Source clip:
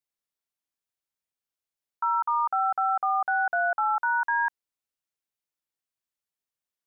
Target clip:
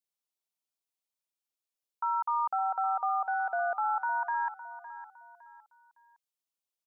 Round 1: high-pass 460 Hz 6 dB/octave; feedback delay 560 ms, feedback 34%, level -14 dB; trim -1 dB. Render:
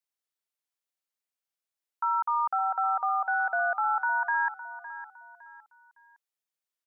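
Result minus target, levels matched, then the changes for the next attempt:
2 kHz band +4.5 dB
add after high-pass: peaking EQ 1.7 kHz -10.5 dB 0.66 oct

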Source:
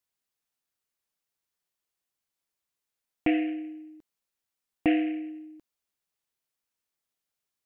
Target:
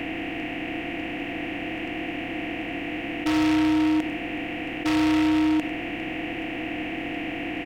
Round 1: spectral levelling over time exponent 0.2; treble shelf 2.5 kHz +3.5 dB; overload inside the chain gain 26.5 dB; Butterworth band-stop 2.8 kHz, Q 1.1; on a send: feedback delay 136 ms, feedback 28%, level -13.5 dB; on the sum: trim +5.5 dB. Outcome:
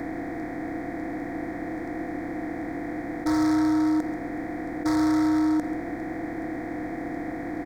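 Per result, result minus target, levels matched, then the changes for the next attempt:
echo 39 ms late; 2 kHz band -6.0 dB
change: feedback delay 97 ms, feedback 28%, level -13.5 dB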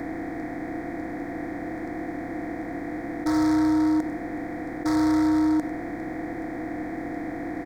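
2 kHz band -6.5 dB
remove: Butterworth band-stop 2.8 kHz, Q 1.1

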